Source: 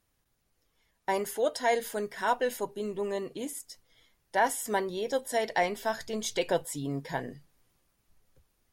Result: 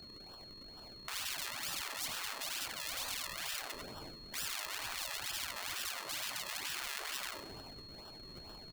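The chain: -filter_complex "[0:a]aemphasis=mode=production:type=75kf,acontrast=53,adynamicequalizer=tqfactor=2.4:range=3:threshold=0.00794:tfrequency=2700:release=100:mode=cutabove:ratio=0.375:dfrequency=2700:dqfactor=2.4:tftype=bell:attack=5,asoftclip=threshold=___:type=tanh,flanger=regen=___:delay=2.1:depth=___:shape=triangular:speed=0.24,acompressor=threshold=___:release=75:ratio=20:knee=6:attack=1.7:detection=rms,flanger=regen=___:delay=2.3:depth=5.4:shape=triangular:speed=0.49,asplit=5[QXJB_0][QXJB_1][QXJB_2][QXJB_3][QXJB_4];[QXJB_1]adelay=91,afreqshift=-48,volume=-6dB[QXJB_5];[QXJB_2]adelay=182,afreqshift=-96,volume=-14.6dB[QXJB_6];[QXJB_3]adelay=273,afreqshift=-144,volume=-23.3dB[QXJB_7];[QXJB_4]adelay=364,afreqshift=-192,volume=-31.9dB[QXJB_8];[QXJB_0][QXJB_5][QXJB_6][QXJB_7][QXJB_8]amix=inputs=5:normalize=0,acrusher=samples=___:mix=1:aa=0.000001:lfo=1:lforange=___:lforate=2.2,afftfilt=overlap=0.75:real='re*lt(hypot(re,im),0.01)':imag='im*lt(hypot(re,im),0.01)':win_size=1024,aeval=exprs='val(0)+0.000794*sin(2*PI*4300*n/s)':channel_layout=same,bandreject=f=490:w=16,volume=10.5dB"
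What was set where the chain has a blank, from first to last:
-9.5dB, -53, 5.3, -31dB, 89, 40, 40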